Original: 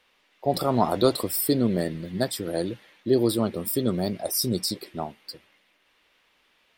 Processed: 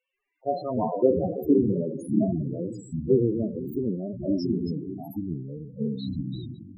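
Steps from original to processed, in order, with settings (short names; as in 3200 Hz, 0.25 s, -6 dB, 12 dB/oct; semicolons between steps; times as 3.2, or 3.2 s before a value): spectral trails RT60 0.97 s; echoes that change speed 0.136 s, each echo -5 st, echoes 2; companded quantiser 6-bit; loudest bins only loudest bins 8; upward expander 1.5:1, over -39 dBFS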